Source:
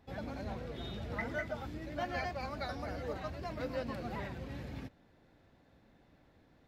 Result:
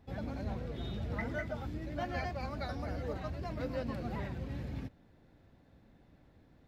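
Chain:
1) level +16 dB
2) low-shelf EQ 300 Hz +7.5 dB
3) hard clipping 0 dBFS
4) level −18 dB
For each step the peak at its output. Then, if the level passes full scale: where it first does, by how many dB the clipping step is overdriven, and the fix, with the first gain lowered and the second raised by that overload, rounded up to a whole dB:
−7.5, −4.0, −4.0, −22.0 dBFS
no step passes full scale

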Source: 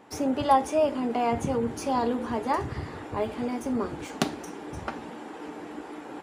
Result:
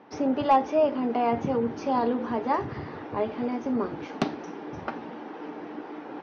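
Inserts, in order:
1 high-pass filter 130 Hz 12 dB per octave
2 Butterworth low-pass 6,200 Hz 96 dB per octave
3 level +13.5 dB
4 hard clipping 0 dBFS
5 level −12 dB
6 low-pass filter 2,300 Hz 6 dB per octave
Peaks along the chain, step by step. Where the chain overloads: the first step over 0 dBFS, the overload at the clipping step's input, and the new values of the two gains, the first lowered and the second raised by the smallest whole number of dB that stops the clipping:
−4.5, −8.0, +5.5, 0.0, −12.0, −12.0 dBFS
step 3, 5.5 dB
step 3 +7.5 dB, step 5 −6 dB

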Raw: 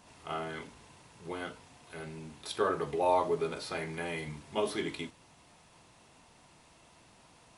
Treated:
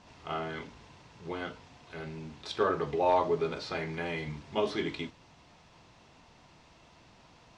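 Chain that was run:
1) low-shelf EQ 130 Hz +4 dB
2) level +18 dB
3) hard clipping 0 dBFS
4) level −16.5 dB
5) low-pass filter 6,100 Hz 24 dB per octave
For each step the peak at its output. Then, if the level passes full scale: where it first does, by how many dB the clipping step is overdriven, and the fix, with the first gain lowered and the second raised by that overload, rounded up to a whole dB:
−14.0, +4.0, 0.0, −16.5, −16.0 dBFS
step 2, 4.0 dB
step 2 +14 dB, step 4 −12.5 dB

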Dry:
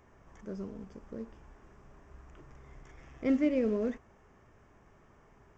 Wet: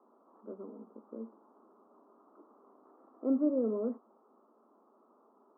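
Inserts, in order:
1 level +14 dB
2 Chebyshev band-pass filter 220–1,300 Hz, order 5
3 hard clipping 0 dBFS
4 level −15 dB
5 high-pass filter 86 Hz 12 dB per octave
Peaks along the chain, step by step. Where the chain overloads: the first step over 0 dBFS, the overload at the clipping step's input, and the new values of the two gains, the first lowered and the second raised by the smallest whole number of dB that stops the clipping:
−3.5, −4.5, −4.5, −19.5, −19.5 dBFS
no step passes full scale

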